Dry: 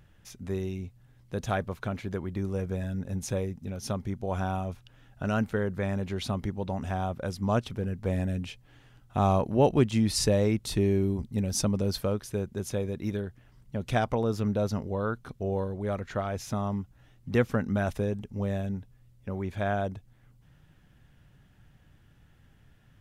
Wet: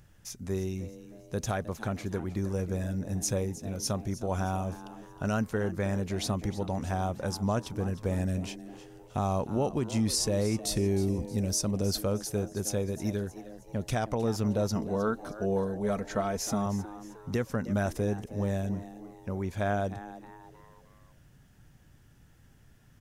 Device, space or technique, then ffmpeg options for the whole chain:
over-bright horn tweeter: -filter_complex "[0:a]highshelf=frequency=4400:width_type=q:width=1.5:gain=6,alimiter=limit=-19dB:level=0:latency=1:release=237,asettb=1/sr,asplit=3[link_01][link_02][link_03];[link_01]atrim=end=14.754[link_04];[link_02]atrim=start=14.75:end=16.66,asetpts=PTS-STARTPTS,afade=type=in:duration=0.004:curve=qsin,afade=type=out:start_time=1.906:duration=0.004:curve=qsin,aecho=1:1:4.5:0.58,atrim=end_sample=84231[link_05];[link_03]atrim=start=16.656[link_06];[link_04][link_05]acrossfade=duration=0.004:curve1=hsin:curve2=qsin[link_07];[link_07][link_06]acrossfade=duration=0.004:curve1=qsin:curve2=hsin,asplit=5[link_08][link_09][link_10][link_11][link_12];[link_09]adelay=312,afreqshift=110,volume=-15dB[link_13];[link_10]adelay=624,afreqshift=220,volume=-22.3dB[link_14];[link_11]adelay=936,afreqshift=330,volume=-29.7dB[link_15];[link_12]adelay=1248,afreqshift=440,volume=-37dB[link_16];[link_08][link_13][link_14][link_15][link_16]amix=inputs=5:normalize=0"

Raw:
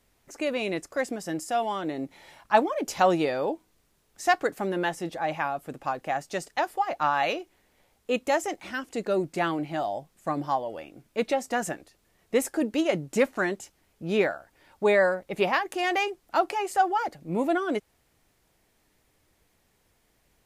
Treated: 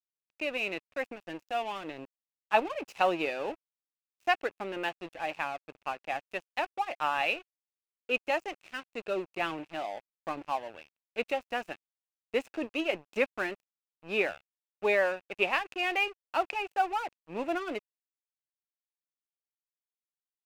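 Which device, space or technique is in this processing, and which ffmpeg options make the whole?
pocket radio on a weak battery: -af "highpass=290,lowpass=4500,aeval=exprs='sgn(val(0))*max(abs(val(0))-0.0106,0)':channel_layout=same,equalizer=frequency=2600:width_type=o:width=0.29:gain=12,volume=-4.5dB"

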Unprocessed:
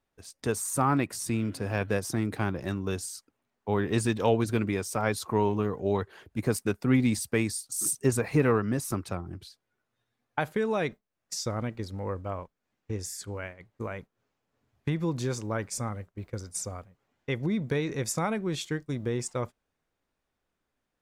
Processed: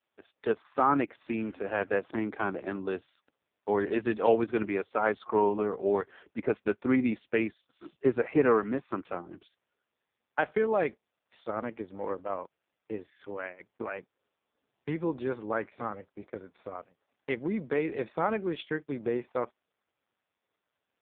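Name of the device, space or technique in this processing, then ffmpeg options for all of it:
telephone: -af "highpass=300,lowpass=3300,volume=3dB" -ar 8000 -c:a libopencore_amrnb -b:a 4750

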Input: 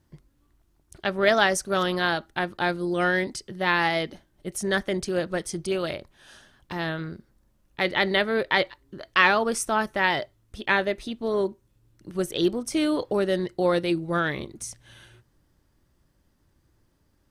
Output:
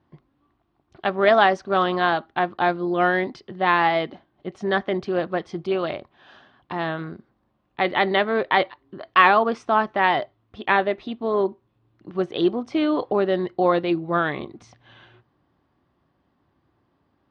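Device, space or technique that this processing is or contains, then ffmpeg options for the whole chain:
guitar cabinet: -af "highpass=100,equalizer=frequency=260:width_type=q:width=4:gain=4,equalizer=frequency=380:width_type=q:width=4:gain=3,equalizer=frequency=740:width_type=q:width=4:gain=9,equalizer=frequency=1100:width_type=q:width=4:gain=8,lowpass=frequency=3800:width=0.5412,lowpass=frequency=3800:width=1.3066"

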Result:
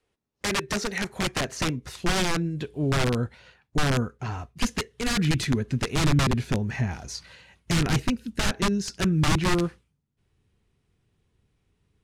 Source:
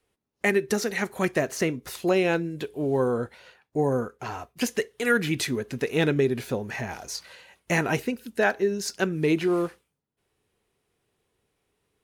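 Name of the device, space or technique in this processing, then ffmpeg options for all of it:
overflowing digital effects unit: -af "aeval=exprs='(mod(8.41*val(0)+1,2)-1)/8.41':channel_layout=same,lowpass=8000,asubboost=boost=5:cutoff=210,volume=-1dB"

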